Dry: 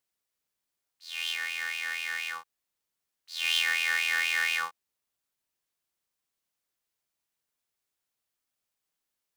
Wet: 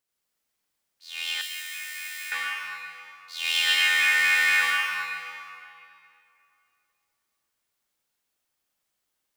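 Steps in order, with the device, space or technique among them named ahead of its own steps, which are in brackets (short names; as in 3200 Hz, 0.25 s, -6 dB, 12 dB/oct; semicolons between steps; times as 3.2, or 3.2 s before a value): stairwell (reverb RT60 2.7 s, pre-delay 71 ms, DRR -5.5 dB); 1.41–2.32 differentiator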